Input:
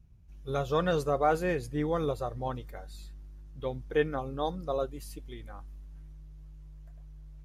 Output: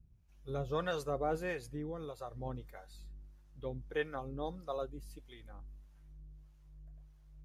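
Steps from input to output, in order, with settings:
0:01.71–0:02.39: downward compressor 5 to 1, threshold −32 dBFS, peak gain reduction 7 dB
two-band tremolo in antiphase 1.6 Hz, depth 70%, crossover 550 Hz
level −4 dB

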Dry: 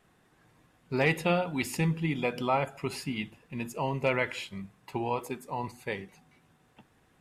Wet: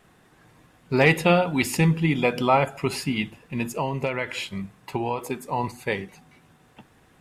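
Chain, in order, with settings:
0:03.63–0:05.41: downward compressor 12 to 1, threshold −30 dBFS, peak gain reduction 9.5 dB
level +8 dB

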